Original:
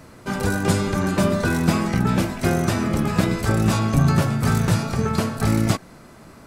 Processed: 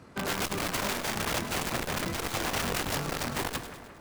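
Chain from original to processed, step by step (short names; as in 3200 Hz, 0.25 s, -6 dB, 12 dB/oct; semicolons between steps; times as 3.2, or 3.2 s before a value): HPF 43 Hz 24 dB/oct; high shelf 7600 Hz -12 dB; notches 60/120/180/240/300/360/420/480 Hz; wrapped overs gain 18 dB; granular stretch 0.62×, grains 50 ms; split-band echo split 2400 Hz, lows 0.176 s, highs 0.104 s, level -13 dB; core saturation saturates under 180 Hz; gain -5 dB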